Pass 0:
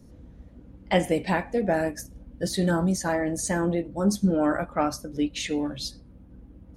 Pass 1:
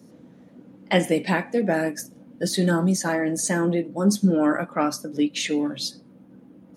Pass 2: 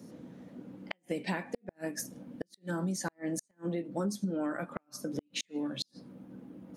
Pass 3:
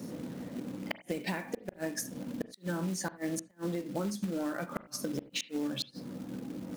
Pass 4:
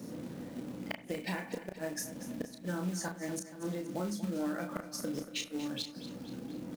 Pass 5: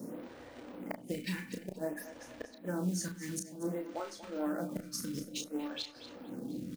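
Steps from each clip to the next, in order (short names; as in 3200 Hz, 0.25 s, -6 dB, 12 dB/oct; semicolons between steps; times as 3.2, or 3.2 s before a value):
HPF 160 Hz 24 dB/oct; dynamic EQ 730 Hz, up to -5 dB, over -37 dBFS, Q 1.3; gain +4.5 dB
compressor 10:1, threshold -30 dBFS, peak gain reduction 16.5 dB; flipped gate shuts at -22 dBFS, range -42 dB
compressor 3:1, threshold -43 dBFS, peak gain reduction 11 dB; short-mantissa float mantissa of 2-bit; reverb, pre-delay 34 ms, DRR 14.5 dB; gain +8.5 dB
doubler 33 ms -5.5 dB; feedback echo 0.237 s, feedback 54%, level -13 dB; gain -3 dB
photocell phaser 0.55 Hz; gain +2.5 dB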